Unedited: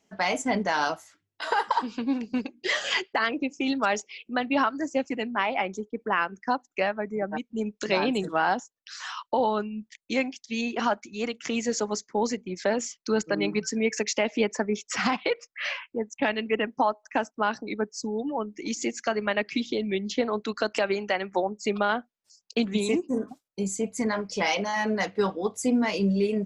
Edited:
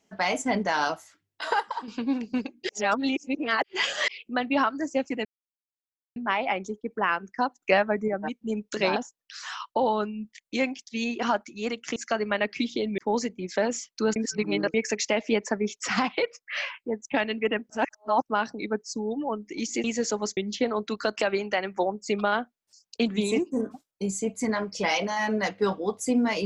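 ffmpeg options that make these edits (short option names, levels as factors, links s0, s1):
-filter_complex "[0:a]asplit=17[s0][s1][s2][s3][s4][s5][s6][s7][s8][s9][s10][s11][s12][s13][s14][s15][s16];[s0]atrim=end=1.602[s17];[s1]atrim=start=1.598:end=1.882,asetpts=PTS-STARTPTS,volume=0.398[s18];[s2]atrim=start=1.878:end=2.692[s19];[s3]atrim=start=2.688:end=4.082,asetpts=PTS-STARTPTS,areverse[s20];[s4]atrim=start=4.078:end=5.25,asetpts=PTS-STARTPTS,afade=t=out:st=1.168:d=0.004:c=hsin,apad=pad_dur=0.91[s21];[s5]atrim=start=5.25:end=6.712,asetpts=PTS-STARTPTS,afade=t=in:d=0.004:c=hsin[s22];[s6]atrim=start=6.708:end=7.172,asetpts=PTS-STARTPTS,volume=1.78[s23];[s7]atrim=start=7.168:end=8.052[s24];[s8]atrim=start=8.528:end=11.532[s25];[s9]atrim=start=18.918:end=19.942[s26];[s10]atrim=start=12.058:end=13.242[s27];[s11]atrim=start=13.238:end=13.822,asetpts=PTS-STARTPTS,areverse[s28];[s12]atrim=start=13.818:end=16.782[s29];[s13]atrim=start=16.778:end=17.302,asetpts=PTS-STARTPTS,areverse[s30];[s14]atrim=start=17.298:end=18.922[s31];[s15]atrim=start=11.528:end=12.062[s32];[s16]atrim=start=19.938[s33];[s17][s18]acrossfade=d=0.004:c1=hsin:c2=hsin[s34];[s34][s19]acrossfade=d=0.004:c1=hsin:c2=hsin[s35];[s35][s20]acrossfade=d=0.004:c1=hsin:c2=hsin[s36];[s21][s22]concat=n=2:v=0:a=1[s37];[s36][s37]acrossfade=d=0.004:c1=hsin:c2=hsin[s38];[s38][s23]acrossfade=d=0.004:c1=hsin:c2=hsin[s39];[s39][s24]acrossfade=d=0.004:c1=hsin:c2=hsin[s40];[s40][s25]acrossfade=d=0.004:c1=hsin:c2=hsin[s41];[s41][s26]acrossfade=d=0.004:c1=hsin:c2=hsin[s42];[s42][s27]acrossfade=d=0.004:c1=hsin:c2=hsin[s43];[s43][s28]acrossfade=d=0.004:c1=hsin:c2=hsin[s44];[s44][s29]acrossfade=d=0.004:c1=hsin:c2=hsin[s45];[s45][s30]acrossfade=d=0.004:c1=hsin:c2=hsin[s46];[s46][s31]acrossfade=d=0.004:c1=hsin:c2=hsin[s47];[s47][s32]acrossfade=d=0.004:c1=hsin:c2=hsin[s48];[s48][s33]acrossfade=d=0.004:c1=hsin:c2=hsin"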